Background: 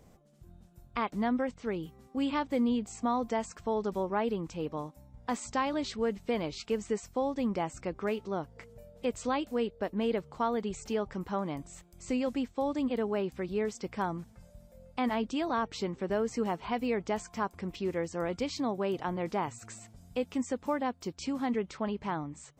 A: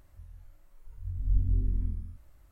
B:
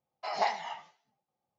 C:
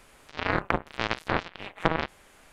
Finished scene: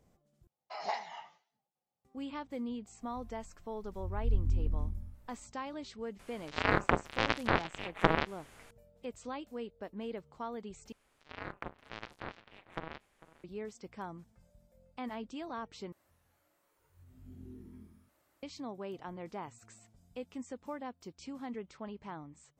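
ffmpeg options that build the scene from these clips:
-filter_complex "[1:a]asplit=2[a][b];[3:a]asplit=2[c][d];[0:a]volume=-10.5dB[e];[d]asplit=2[f][g];[g]adelay=449,volume=-18dB,highshelf=f=4k:g=-10.1[h];[f][h]amix=inputs=2:normalize=0[i];[b]highpass=280[j];[e]asplit=4[k][l][m][n];[k]atrim=end=0.474[o];[2:a]atrim=end=1.58,asetpts=PTS-STARTPTS,volume=-7dB[p];[l]atrim=start=2.046:end=10.924[q];[i]atrim=end=2.52,asetpts=PTS-STARTPTS,volume=-17dB[r];[m]atrim=start=13.436:end=15.924[s];[j]atrim=end=2.51,asetpts=PTS-STARTPTS,volume=-2dB[t];[n]atrim=start=18.426[u];[a]atrim=end=2.51,asetpts=PTS-STARTPTS,volume=-3.5dB,afade=t=in:d=0.05,afade=t=out:st=2.46:d=0.05,adelay=2980[v];[c]atrim=end=2.52,asetpts=PTS-STARTPTS,volume=-2dB,afade=t=in:d=0.004:c=hsin,afade=t=out:st=2.516:d=0.004:c=hsin,adelay=6190[w];[o][p]acrossfade=d=0.004:c1=hsin:c2=hsin[x];[x][q]acrossfade=d=0.004:c1=hsin:c2=hsin[y];[y][r]acrossfade=d=0.004:c1=hsin:c2=hsin[z];[z][s]acrossfade=d=0.004:c1=hsin:c2=hsin[aa];[aa][t]acrossfade=d=0.004:c1=hsin:c2=hsin[ab];[ab][u]acrossfade=d=0.004:c1=hsin:c2=hsin[ac];[ac][v][w]amix=inputs=3:normalize=0"

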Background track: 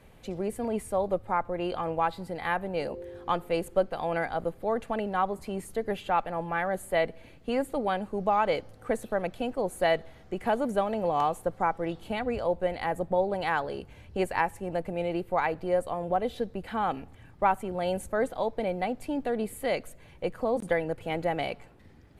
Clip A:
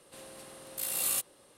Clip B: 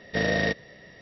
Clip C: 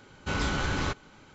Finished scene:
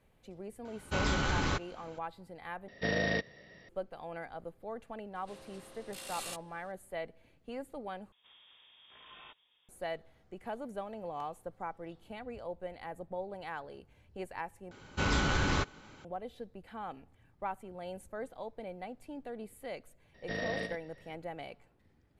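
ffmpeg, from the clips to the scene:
-filter_complex "[3:a]asplit=2[a][b];[2:a]asplit=2[c][d];[1:a]asplit=2[e][f];[0:a]volume=-13.5dB[g];[e]lowpass=5.9k[h];[f]lowpass=f=3.2k:t=q:w=0.5098,lowpass=f=3.2k:t=q:w=0.6013,lowpass=f=3.2k:t=q:w=0.9,lowpass=f=3.2k:t=q:w=2.563,afreqshift=-3800[i];[d]asplit=2[j][k];[k]adelay=93.29,volume=-8dB,highshelf=f=4k:g=-2.1[l];[j][l]amix=inputs=2:normalize=0[m];[g]asplit=4[n][o][p][q];[n]atrim=end=2.684[r];[c]atrim=end=1.01,asetpts=PTS-STARTPTS,volume=-6.5dB[s];[o]atrim=start=3.686:end=8.124[t];[i]atrim=end=1.57,asetpts=PTS-STARTPTS,volume=-10.5dB[u];[p]atrim=start=9.686:end=14.714[v];[b]atrim=end=1.34,asetpts=PTS-STARTPTS,volume=-0.5dB[w];[q]atrim=start=16.046[x];[a]atrim=end=1.34,asetpts=PTS-STARTPTS,volume=-2dB,afade=t=in:d=0.004:c=hsin,afade=t=out:st=1.336:d=0.004:c=hsin,adelay=650[y];[h]atrim=end=1.57,asetpts=PTS-STARTPTS,volume=-4dB,afade=t=in:d=0.004:c=hsin,afade=t=out:st=1.566:d=0.004:c=hsin,adelay=5150[z];[m]atrim=end=1.01,asetpts=PTS-STARTPTS,volume=-12dB,afade=t=in:d=0.004:c=hsin,afade=t=out:st=1.006:d=0.004:c=hsin,adelay=20140[aa];[r][s]acrossfade=d=0.004:c1=hsin:c2=hsin[ab];[ab][t]acrossfade=d=0.004:c1=hsin:c2=hsin[ac];[ac][u]acrossfade=d=0.004:c1=hsin:c2=hsin[ad];[ad][v]acrossfade=d=0.004:c1=hsin:c2=hsin[ae];[ae][w]acrossfade=d=0.004:c1=hsin:c2=hsin[af];[af][x]acrossfade=d=0.004:c1=hsin:c2=hsin[ag];[ag][y][z][aa]amix=inputs=4:normalize=0"

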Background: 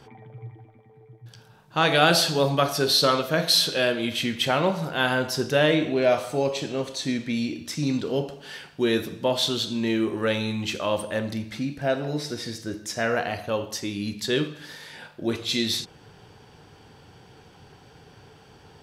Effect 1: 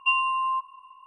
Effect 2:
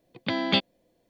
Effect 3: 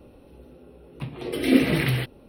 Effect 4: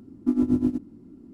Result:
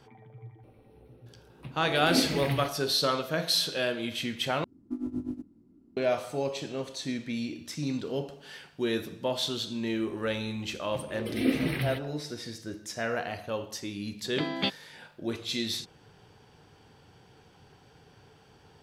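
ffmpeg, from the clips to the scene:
-filter_complex "[3:a]asplit=2[a][b];[0:a]volume=-6.5dB,asplit=2[c][d];[c]atrim=end=4.644[e];[4:a]atrim=end=1.33,asetpts=PTS-STARTPTS,volume=-12dB[f];[d]atrim=start=5.966[g];[a]atrim=end=2.28,asetpts=PTS-STARTPTS,volume=-9.5dB,afade=t=in:d=0.004:c=hsin,afade=t=out:st=2.276:d=0.004:c=hsin,adelay=630[h];[b]atrim=end=2.28,asetpts=PTS-STARTPTS,volume=-8dB,afade=t=in:d=0.004:c=hsin,afade=t=out:st=2.276:d=0.004:c=hsin,adelay=9930[i];[2:a]atrim=end=1.09,asetpts=PTS-STARTPTS,volume=-6dB,afade=t=in:d=0.004:c=hsin,afade=t=out:st=1.086:d=0.004:c=hsin,adelay=14100[j];[e][f]acrossfade=d=0.004:c1=hsin:c2=hsin[k];[k][g]acrossfade=d=0.004:c1=hsin:c2=hsin[l];[l][h][i][j]amix=inputs=4:normalize=0"

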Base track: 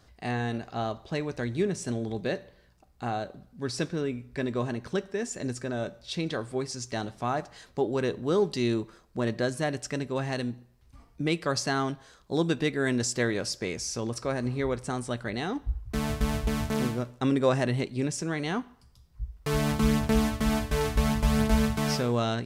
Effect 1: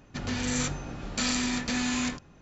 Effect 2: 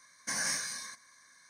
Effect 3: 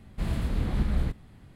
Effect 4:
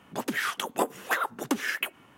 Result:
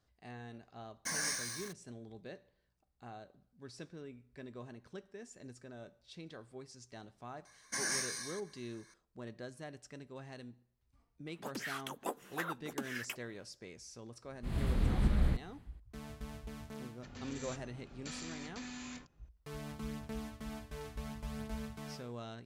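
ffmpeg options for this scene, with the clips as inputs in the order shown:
-filter_complex "[2:a]asplit=2[a][b];[0:a]volume=-18.5dB[c];[a]acrusher=bits=6:mix=0:aa=0.5[d];[3:a]dynaudnorm=f=120:g=5:m=14.5dB[e];[d]atrim=end=1.49,asetpts=PTS-STARTPTS,volume=-3.5dB,afade=t=in:d=0.004:c=hsin,afade=t=out:st=1.486:d=0.004:c=hsin,adelay=780[f];[b]atrim=end=1.49,asetpts=PTS-STARTPTS,volume=-3dB,afade=t=in:d=0.004:c=hsin,afade=t=out:st=1.486:d=0.004:c=hsin,adelay=7450[g];[4:a]atrim=end=2.17,asetpts=PTS-STARTPTS,volume=-12.5dB,afade=t=in:d=0.004:c=hsin,afade=t=out:st=2.166:d=0.004:c=hsin,adelay=11270[h];[e]atrim=end=1.55,asetpts=PTS-STARTPTS,volume=-16dB,afade=t=in:d=0.004:c=hsin,afade=t=out:st=1.546:d=0.004:c=hsin,adelay=14250[i];[1:a]atrim=end=2.41,asetpts=PTS-STARTPTS,volume=-17.5dB,afade=t=in:d=0.004:c=hsin,afade=t=out:st=2.406:d=0.004:c=hsin,adelay=16880[j];[c][f][g][h][i][j]amix=inputs=6:normalize=0"

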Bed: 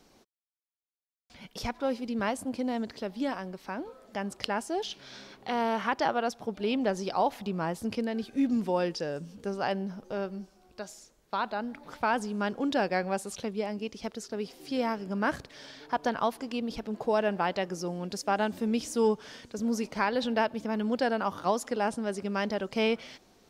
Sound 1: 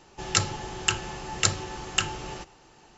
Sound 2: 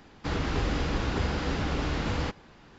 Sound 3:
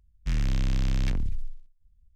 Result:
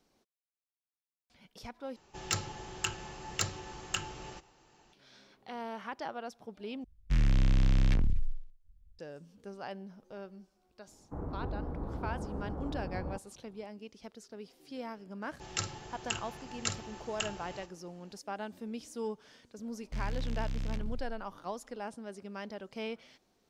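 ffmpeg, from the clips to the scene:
-filter_complex "[1:a]asplit=2[a][b];[3:a]asplit=2[c][d];[0:a]volume=-12dB[e];[a]volume=11dB,asoftclip=hard,volume=-11dB[f];[c]highshelf=f=5.2k:g=-8.5[g];[2:a]lowpass=f=1k:w=0.5412,lowpass=f=1k:w=1.3066[h];[b]asplit=2[i][j];[j]adelay=49,volume=-11dB[k];[i][k]amix=inputs=2:normalize=0[l];[e]asplit=3[m][n][o];[m]atrim=end=1.964[p];[f]atrim=end=2.97,asetpts=PTS-STARTPTS,volume=-8.5dB[q];[n]atrim=start=4.926:end=6.844[r];[g]atrim=end=2.15[s];[o]atrim=start=8.986[t];[h]atrim=end=2.78,asetpts=PTS-STARTPTS,volume=-9dB,afade=t=in:d=0.004:c=hsin,afade=t=out:st=2.776:d=0.004:c=hsin,adelay=10870[u];[l]atrim=end=2.97,asetpts=PTS-STARTPTS,volume=-11.5dB,afade=t=in:d=0.004:c=hsin,afade=t=out:st=2.966:d=0.004:c=hsin,adelay=15220[v];[d]atrim=end=2.15,asetpts=PTS-STARTPTS,volume=-10dB,afade=t=in:d=0.004:c=hsin,afade=t=out:st=2.146:d=0.004:c=hsin,adelay=19660[w];[p][q]acrossfade=d=0.004:c1=hsin:c2=hsin[x];[x][r]acrossfade=d=0.004:c1=hsin:c2=hsin[y];[y][s]acrossfade=d=0.004:c1=hsin:c2=hsin[z];[z][t]acrossfade=d=0.004:c1=hsin:c2=hsin[aa];[aa][u][v][w]amix=inputs=4:normalize=0"

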